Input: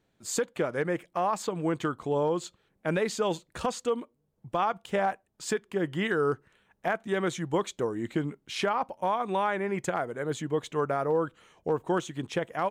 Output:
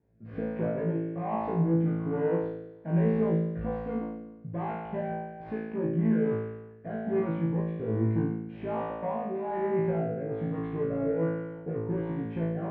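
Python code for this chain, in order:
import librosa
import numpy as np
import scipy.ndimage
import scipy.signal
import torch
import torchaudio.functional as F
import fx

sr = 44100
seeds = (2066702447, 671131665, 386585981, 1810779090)

y = fx.tracing_dist(x, sr, depth_ms=0.15)
y = 10.0 ** (-30.5 / 20.0) * np.tanh(y / 10.0 ** (-30.5 / 20.0))
y = scipy.signal.sosfilt(scipy.signal.butter(4, 2000.0, 'lowpass', fs=sr, output='sos'), y)
y = fx.tilt_shelf(y, sr, db=8.5, hz=670.0)
y = fx.room_flutter(y, sr, wall_m=3.1, rt60_s=1.2)
y = fx.rotary(y, sr, hz=1.2)
y = scipy.signal.sosfilt(scipy.signal.butter(2, 68.0, 'highpass', fs=sr, output='sos'), y)
y = fx.peak_eq(y, sr, hz=360.0, db=-4.5, octaves=1.1)
y = fx.notch(y, sr, hz=1300.0, q=5.4)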